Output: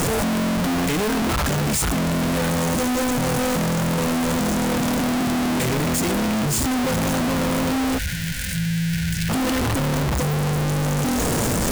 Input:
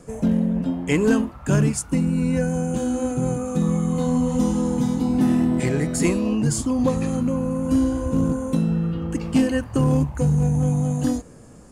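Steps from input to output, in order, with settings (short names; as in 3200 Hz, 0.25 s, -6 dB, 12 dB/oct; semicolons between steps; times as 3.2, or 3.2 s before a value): infinite clipping; spectral gain 7.98–9.29, 210–1400 Hz -24 dB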